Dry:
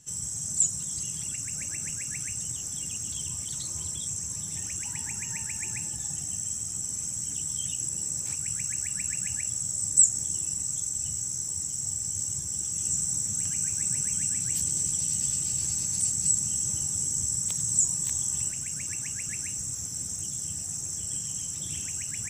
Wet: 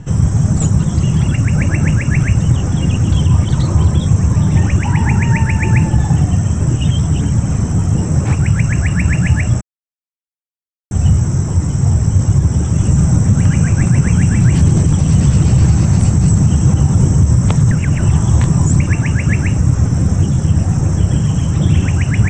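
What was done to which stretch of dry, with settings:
6.61–7.95 reverse
9.61–10.91 mute
17.71–18.8 reverse
whole clip: LPF 1300 Hz 12 dB/oct; low shelf 140 Hz +8 dB; maximiser +30 dB; gain -1 dB

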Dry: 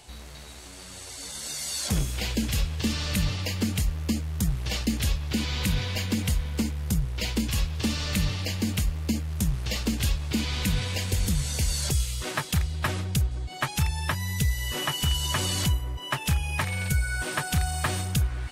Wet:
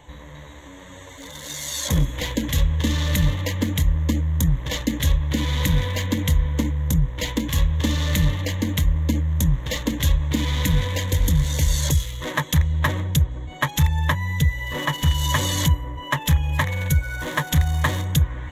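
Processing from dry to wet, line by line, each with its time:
14.13–15.16 high shelf 8200 Hz -> 4200 Hz -5.5 dB
whole clip: Wiener smoothing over 9 samples; ripple EQ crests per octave 1.1, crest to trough 11 dB; gain +4.5 dB

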